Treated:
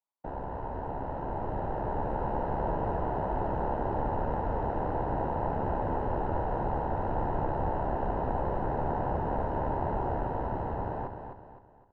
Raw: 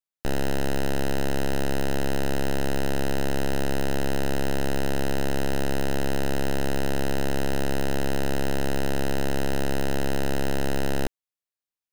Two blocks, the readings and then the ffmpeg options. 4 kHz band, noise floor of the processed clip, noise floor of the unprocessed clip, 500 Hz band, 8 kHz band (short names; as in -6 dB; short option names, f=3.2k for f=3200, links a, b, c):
under -25 dB, -52 dBFS, under -85 dBFS, -4.0 dB, under -40 dB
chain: -af "lowshelf=f=220:g=-6.5,alimiter=level_in=4dB:limit=-24dB:level=0:latency=1:release=39,volume=-4dB,dynaudnorm=f=240:g=13:m=6dB,afftfilt=real='hypot(re,im)*cos(2*PI*random(0))':imag='hypot(re,im)*sin(2*PI*random(1))':win_size=512:overlap=0.75,lowpass=f=950:t=q:w=4.9,aecho=1:1:257|514|771|1028|1285:0.447|0.174|0.0679|0.0265|0.0103,volume=3.5dB"